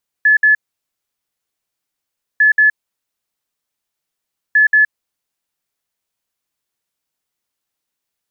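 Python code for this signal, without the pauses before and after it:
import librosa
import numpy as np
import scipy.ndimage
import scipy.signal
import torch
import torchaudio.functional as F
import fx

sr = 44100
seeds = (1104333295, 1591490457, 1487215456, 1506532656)

y = fx.beep_pattern(sr, wave='sine', hz=1720.0, on_s=0.12, off_s=0.06, beeps=2, pause_s=1.85, groups=3, level_db=-7.0)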